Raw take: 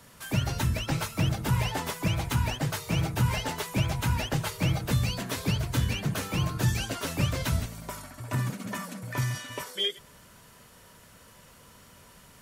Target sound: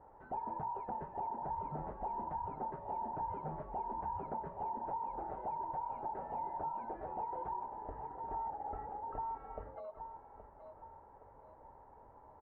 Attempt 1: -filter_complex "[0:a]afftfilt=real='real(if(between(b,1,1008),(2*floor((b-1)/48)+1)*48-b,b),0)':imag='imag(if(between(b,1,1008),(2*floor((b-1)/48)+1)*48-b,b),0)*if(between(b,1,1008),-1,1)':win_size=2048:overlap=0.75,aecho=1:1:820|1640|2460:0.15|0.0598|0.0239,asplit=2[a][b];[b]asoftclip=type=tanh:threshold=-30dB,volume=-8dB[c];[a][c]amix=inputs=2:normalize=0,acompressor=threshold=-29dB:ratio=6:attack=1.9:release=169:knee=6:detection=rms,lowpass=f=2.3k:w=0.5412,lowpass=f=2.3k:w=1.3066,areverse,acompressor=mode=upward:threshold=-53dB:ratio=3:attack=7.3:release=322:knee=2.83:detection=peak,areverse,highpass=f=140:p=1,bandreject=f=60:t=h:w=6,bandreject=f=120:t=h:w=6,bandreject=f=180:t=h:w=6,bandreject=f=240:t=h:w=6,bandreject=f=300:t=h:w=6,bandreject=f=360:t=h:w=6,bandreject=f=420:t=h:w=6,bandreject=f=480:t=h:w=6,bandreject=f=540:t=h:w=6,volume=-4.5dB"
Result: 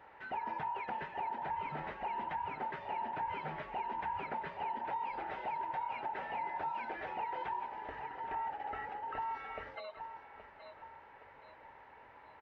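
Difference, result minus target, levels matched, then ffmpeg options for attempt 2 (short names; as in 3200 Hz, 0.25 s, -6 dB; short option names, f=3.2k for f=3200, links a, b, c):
2000 Hz band +16.5 dB; 125 Hz band -5.5 dB
-filter_complex "[0:a]afftfilt=real='real(if(between(b,1,1008),(2*floor((b-1)/48)+1)*48-b,b),0)':imag='imag(if(between(b,1,1008),(2*floor((b-1)/48)+1)*48-b,b),0)*if(between(b,1,1008),-1,1)':win_size=2048:overlap=0.75,aecho=1:1:820|1640|2460:0.15|0.0598|0.0239,asplit=2[a][b];[b]asoftclip=type=tanh:threshold=-30dB,volume=-8dB[c];[a][c]amix=inputs=2:normalize=0,acompressor=threshold=-29dB:ratio=6:attack=1.9:release=169:knee=6:detection=rms,lowpass=f=1k:w=0.5412,lowpass=f=1k:w=1.3066,areverse,acompressor=mode=upward:threshold=-53dB:ratio=3:attack=7.3:release=322:knee=2.83:detection=peak,areverse,bandreject=f=60:t=h:w=6,bandreject=f=120:t=h:w=6,bandreject=f=180:t=h:w=6,bandreject=f=240:t=h:w=6,bandreject=f=300:t=h:w=6,bandreject=f=360:t=h:w=6,bandreject=f=420:t=h:w=6,bandreject=f=480:t=h:w=6,bandreject=f=540:t=h:w=6,volume=-4.5dB"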